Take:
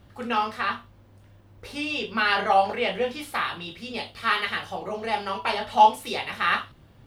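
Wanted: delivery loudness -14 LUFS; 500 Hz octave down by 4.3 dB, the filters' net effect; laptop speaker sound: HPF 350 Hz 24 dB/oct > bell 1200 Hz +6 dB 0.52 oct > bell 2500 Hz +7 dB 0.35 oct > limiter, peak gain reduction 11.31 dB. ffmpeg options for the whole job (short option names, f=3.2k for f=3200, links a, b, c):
-af "highpass=f=350:w=0.5412,highpass=f=350:w=1.3066,equalizer=f=500:t=o:g=-5.5,equalizer=f=1.2k:t=o:w=0.52:g=6,equalizer=f=2.5k:t=o:w=0.35:g=7,volume=14dB,alimiter=limit=-3dB:level=0:latency=1"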